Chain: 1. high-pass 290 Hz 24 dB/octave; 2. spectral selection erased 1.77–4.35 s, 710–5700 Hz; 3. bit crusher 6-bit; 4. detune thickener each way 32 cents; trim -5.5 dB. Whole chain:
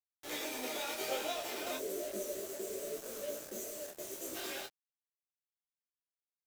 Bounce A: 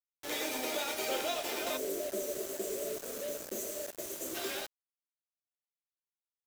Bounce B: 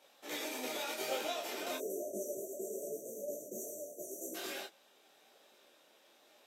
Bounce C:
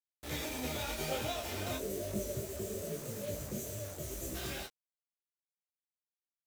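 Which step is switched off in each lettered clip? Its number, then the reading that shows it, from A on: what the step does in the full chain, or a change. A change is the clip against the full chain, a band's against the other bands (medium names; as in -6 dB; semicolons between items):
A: 4, crest factor change -2.5 dB; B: 3, distortion -9 dB; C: 1, 125 Hz band +21.5 dB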